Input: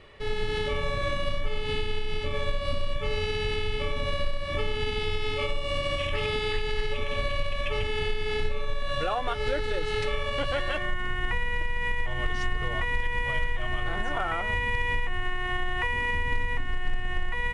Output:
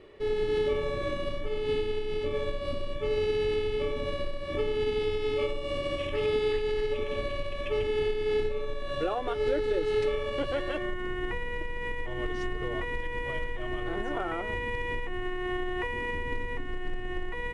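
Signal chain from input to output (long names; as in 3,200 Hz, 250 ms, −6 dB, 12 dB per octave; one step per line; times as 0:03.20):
parametric band 360 Hz +14.5 dB 1.2 octaves
level −7 dB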